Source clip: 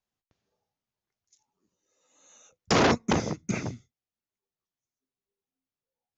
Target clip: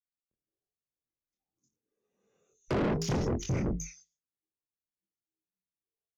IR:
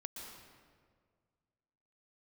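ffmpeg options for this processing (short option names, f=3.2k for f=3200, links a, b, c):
-filter_complex "[0:a]bandreject=f=60:t=h:w=6,bandreject=f=120:t=h:w=6,bandreject=f=180:t=h:w=6,bandreject=f=240:t=h:w=6,bandreject=f=300:t=h:w=6,bandreject=f=360:t=h:w=6,bandreject=f=420:t=h:w=6,bandreject=f=480:t=h:w=6,bandreject=f=540:t=h:w=6,afftdn=nr=18:nf=-42,equalizer=f=250:t=o:w=1:g=5,equalizer=f=500:t=o:w=1:g=7,equalizer=f=1k:t=o:w=1:g=-8,equalizer=f=2k:t=o:w=1:g=-3,equalizer=f=4k:t=o:w=1:g=-7,acrossover=split=3600[a][b];[b]adelay=310[c];[a][c]amix=inputs=2:normalize=0,acompressor=threshold=-25dB:ratio=5,afreqshift=-75,flanger=delay=22.5:depth=2.4:speed=1.1,asoftclip=type=tanh:threshold=-36dB,dynaudnorm=f=530:g=3:m=10dB,adynamicequalizer=threshold=0.00355:dfrequency=3400:dqfactor=0.7:tfrequency=3400:tqfactor=0.7:attack=5:release=100:ratio=0.375:range=2.5:mode=cutabove:tftype=highshelf"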